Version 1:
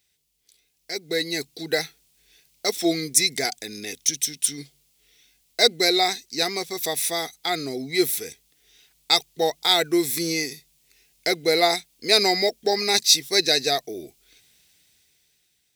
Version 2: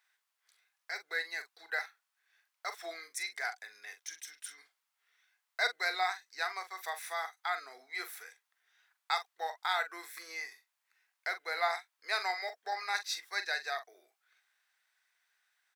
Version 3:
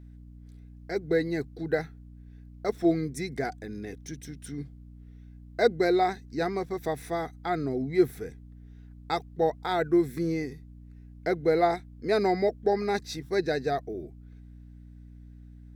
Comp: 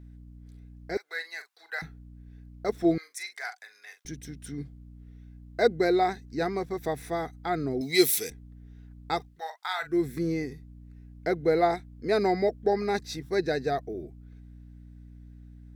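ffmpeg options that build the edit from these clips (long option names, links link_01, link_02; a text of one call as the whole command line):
ffmpeg -i take0.wav -i take1.wav -i take2.wav -filter_complex "[1:a]asplit=3[link_01][link_02][link_03];[2:a]asplit=5[link_04][link_05][link_06][link_07][link_08];[link_04]atrim=end=0.972[link_09];[link_01]atrim=start=0.968:end=1.822[link_10];[link_05]atrim=start=1.818:end=2.982[link_11];[link_02]atrim=start=2.978:end=4.052[link_12];[link_06]atrim=start=4.048:end=7.812[link_13];[0:a]atrim=start=7.808:end=8.302[link_14];[link_07]atrim=start=8.298:end=9.41[link_15];[link_03]atrim=start=9.17:end=10.05[link_16];[link_08]atrim=start=9.81[link_17];[link_09][link_10]acrossfade=duration=0.004:curve1=hsin:curve2=hsin[link_18];[link_18][link_11]acrossfade=duration=0.004:curve1=hsin:curve2=hsin[link_19];[link_19][link_12]acrossfade=duration=0.004:curve1=hsin:curve2=hsin[link_20];[link_20][link_13]acrossfade=duration=0.004:curve1=hsin:curve2=hsin[link_21];[link_21][link_14]acrossfade=duration=0.004:curve1=hsin:curve2=hsin[link_22];[link_22][link_15]acrossfade=duration=0.004:curve1=hsin:curve2=hsin[link_23];[link_23][link_16]acrossfade=duration=0.24:curve1=tri:curve2=tri[link_24];[link_24][link_17]acrossfade=duration=0.24:curve1=tri:curve2=tri" out.wav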